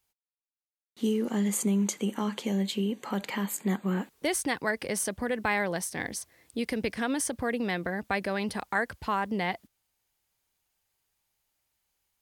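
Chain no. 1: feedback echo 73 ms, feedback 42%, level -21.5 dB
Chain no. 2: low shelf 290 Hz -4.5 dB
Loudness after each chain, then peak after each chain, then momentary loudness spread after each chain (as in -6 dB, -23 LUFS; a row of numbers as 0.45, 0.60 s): -30.5, -31.5 LUFS; -14.0, -14.5 dBFS; 5, 6 LU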